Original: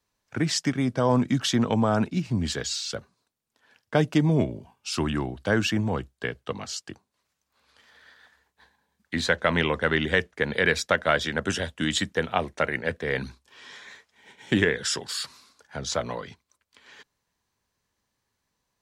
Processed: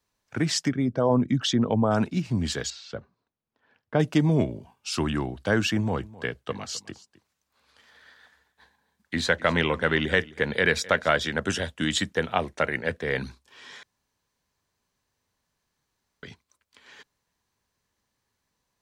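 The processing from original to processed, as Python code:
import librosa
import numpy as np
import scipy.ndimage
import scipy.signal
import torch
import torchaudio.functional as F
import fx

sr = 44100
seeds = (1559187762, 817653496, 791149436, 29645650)

y = fx.envelope_sharpen(x, sr, power=1.5, at=(0.67, 1.9), fade=0.02)
y = fx.spacing_loss(y, sr, db_at_10k=28, at=(2.7, 4.0))
y = fx.echo_single(y, sr, ms=259, db=-19.5, at=(5.96, 11.16), fade=0.02)
y = fx.edit(y, sr, fx.room_tone_fill(start_s=13.83, length_s=2.4), tone=tone)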